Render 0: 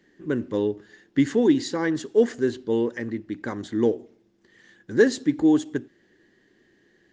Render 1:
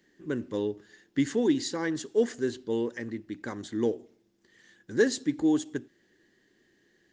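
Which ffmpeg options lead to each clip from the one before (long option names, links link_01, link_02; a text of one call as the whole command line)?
ffmpeg -i in.wav -af "highshelf=frequency=4200:gain=9,volume=-6dB" out.wav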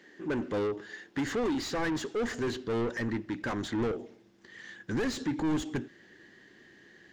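ffmpeg -i in.wav -filter_complex "[0:a]alimiter=limit=-18.5dB:level=0:latency=1:release=192,asplit=2[link_01][link_02];[link_02]highpass=frequency=720:poles=1,volume=26dB,asoftclip=type=tanh:threshold=-18.5dB[link_03];[link_01][link_03]amix=inputs=2:normalize=0,lowpass=frequency=1800:poles=1,volume=-6dB,asubboost=boost=3.5:cutoff=190,volume=-4dB" out.wav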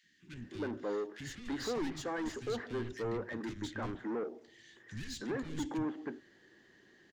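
ffmpeg -i in.wav -filter_complex "[0:a]acrossover=split=200|2100[link_01][link_02][link_03];[link_01]adelay=30[link_04];[link_02]adelay=320[link_05];[link_04][link_05][link_03]amix=inputs=3:normalize=0,volume=-5dB" out.wav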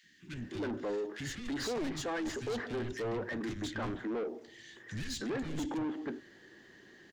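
ffmpeg -i in.wav -af "asoftclip=type=tanh:threshold=-37.5dB,volume=6dB" out.wav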